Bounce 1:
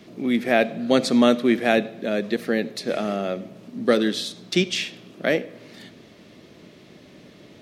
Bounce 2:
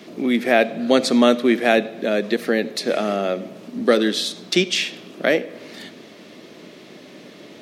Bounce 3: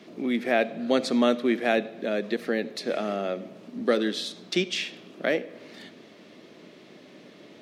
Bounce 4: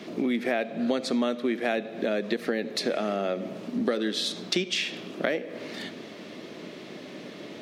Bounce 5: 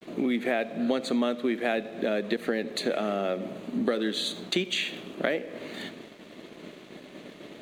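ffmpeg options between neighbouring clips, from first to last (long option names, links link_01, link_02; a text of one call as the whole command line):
ffmpeg -i in.wav -filter_complex "[0:a]highpass=220,asplit=2[link_01][link_02];[link_02]acompressor=threshold=-28dB:ratio=6,volume=-1dB[link_03];[link_01][link_03]amix=inputs=2:normalize=0,volume=1.5dB" out.wav
ffmpeg -i in.wav -af "highshelf=frequency=7300:gain=-8,volume=-7dB" out.wav
ffmpeg -i in.wav -af "acompressor=threshold=-32dB:ratio=6,volume=8dB" out.wav
ffmpeg -i in.wav -af "asuperstop=centerf=5300:order=4:qfactor=3.2,agate=range=-33dB:threshold=-38dB:ratio=3:detection=peak,aeval=exprs='sgn(val(0))*max(abs(val(0))-0.00178,0)':channel_layout=same" out.wav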